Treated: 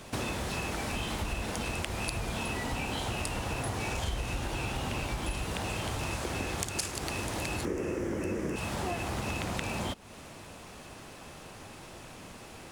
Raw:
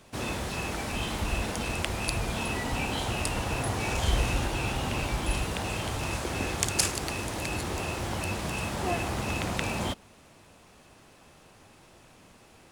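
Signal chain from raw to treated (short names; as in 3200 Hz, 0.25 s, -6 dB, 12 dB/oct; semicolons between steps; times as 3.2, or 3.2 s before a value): 7.65–8.56 EQ curve 120 Hz 0 dB, 330 Hz +13 dB, 500 Hz +11 dB, 730 Hz -6 dB, 1900 Hz +3 dB, 4100 Hz -15 dB, 5800 Hz -1 dB, 9300 Hz -6 dB; compressor 5:1, threshold -40 dBFS, peak gain reduction 18.5 dB; gain +8 dB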